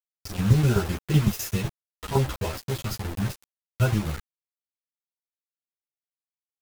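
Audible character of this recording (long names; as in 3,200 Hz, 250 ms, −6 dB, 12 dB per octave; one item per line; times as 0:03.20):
tremolo saw down 7.9 Hz, depth 75%
a quantiser's noise floor 6 bits, dither none
a shimmering, thickened sound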